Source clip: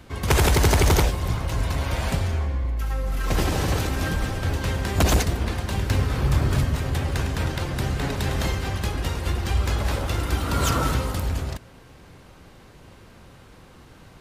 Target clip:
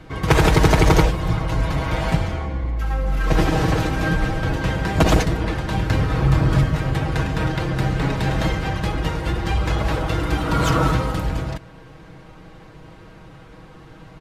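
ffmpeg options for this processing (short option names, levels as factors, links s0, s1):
-af "lowpass=f=2400:p=1,aecho=1:1:6.3:0.62,volume=1.68"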